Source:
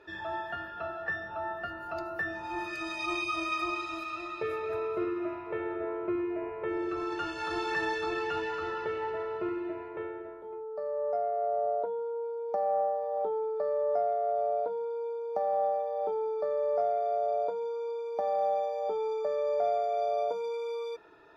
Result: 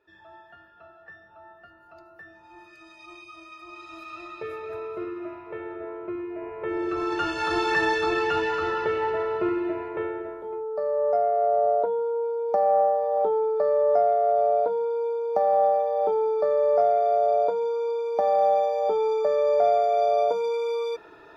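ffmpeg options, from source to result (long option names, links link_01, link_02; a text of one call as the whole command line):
ffmpeg -i in.wav -af "volume=8dB,afade=type=in:start_time=3.64:duration=0.56:silence=0.251189,afade=type=in:start_time=6.31:duration=0.98:silence=0.334965" out.wav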